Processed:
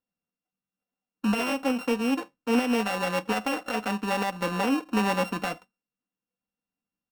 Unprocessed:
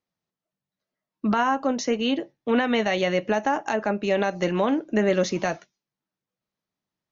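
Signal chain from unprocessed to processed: sorted samples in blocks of 32 samples; treble shelf 3.8 kHz -10.5 dB; comb 4 ms, depth 71%; trim -4 dB

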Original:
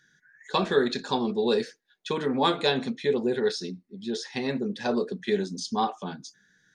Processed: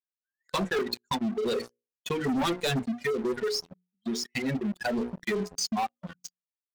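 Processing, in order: expander on every frequency bin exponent 2; reverb removal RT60 1.8 s; hum notches 60/120/180/240/300/360/420/480/540 Hz; dynamic bell 870 Hz, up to -3 dB, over -38 dBFS, Q 1; 0.64–1.28 s: transient shaper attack +3 dB, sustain -8 dB; 2.25–2.83 s: peaking EQ 160 Hz +8.5 dB 2 oct; waveshaping leveller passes 5; compression 2.5:1, threshold -25 dBFS, peak gain reduction 7.5 dB; trim -4.5 dB

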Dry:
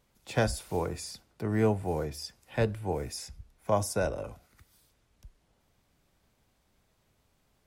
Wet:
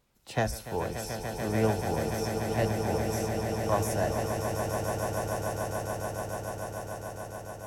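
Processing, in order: echo with a slow build-up 145 ms, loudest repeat 8, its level -9 dB; formant shift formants +2 st; trim -1.5 dB

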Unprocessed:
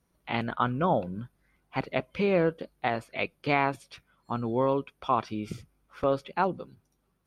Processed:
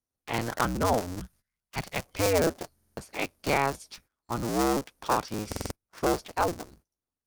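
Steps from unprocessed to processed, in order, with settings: cycle switcher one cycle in 2, inverted; 1.20–2.06 s: FFT filter 190 Hz 0 dB, 290 Hz -10 dB, 2.6 kHz +2 dB; gate -57 dBFS, range -20 dB; resonant high shelf 4.2 kHz +6.5 dB, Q 1.5; buffer glitch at 2.74/5.48 s, samples 2048, times 4

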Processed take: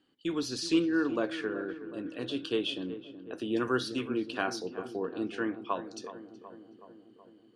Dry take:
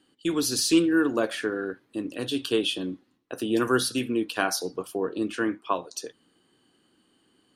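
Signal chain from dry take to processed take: low-pass 4.8 kHz 12 dB/octave; on a send: filtered feedback delay 373 ms, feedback 69%, low-pass 1.4 kHz, level -12 dB; on the sum: trim -6 dB

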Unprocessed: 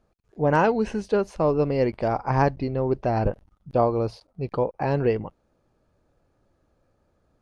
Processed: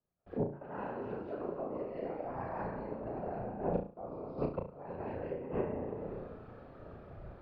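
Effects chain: algorithmic reverb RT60 1.2 s, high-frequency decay 0.7×, pre-delay 120 ms, DRR -4.5 dB; whisper effect; bass shelf 85 Hz -9 dB; inverted gate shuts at -16 dBFS, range -33 dB; de-hum 48.55 Hz, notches 7; compression 6:1, threshold -51 dBFS, peak gain reduction 25.5 dB; gate with hold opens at -56 dBFS; distance through air 440 m; on a send: flutter echo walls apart 6 m, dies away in 0.38 s; on the sum: three bands expanded up and down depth 40%; trim +16 dB

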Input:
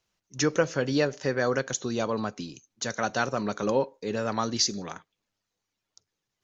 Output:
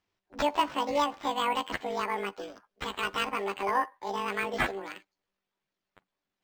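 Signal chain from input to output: rotating-head pitch shifter +11.5 st; decimation joined by straight lines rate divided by 4×; trim -1.5 dB

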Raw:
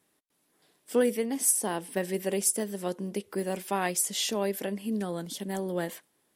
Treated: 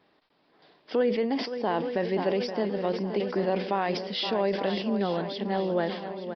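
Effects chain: on a send: shuffle delay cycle 870 ms, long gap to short 1.5:1, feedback 43%, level -12 dB; on the sum: peak limiter -21 dBFS, peak gain reduction 11 dB; resampled via 11.025 kHz; in parallel at 0 dB: compression, threshold -44 dBFS, peak gain reduction 17 dB; on the sum: peaking EQ 740 Hz +6 dB 1.7 oct; decay stretcher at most 70 dB/s

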